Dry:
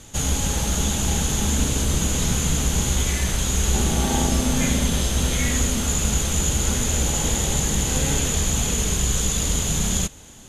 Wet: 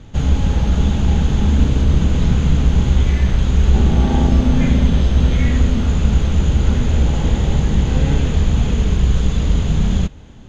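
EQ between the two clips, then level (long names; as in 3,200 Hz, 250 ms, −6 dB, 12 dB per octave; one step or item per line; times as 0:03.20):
high-frequency loss of the air 230 metres
low-shelf EQ 290 Hz +9 dB
+1.0 dB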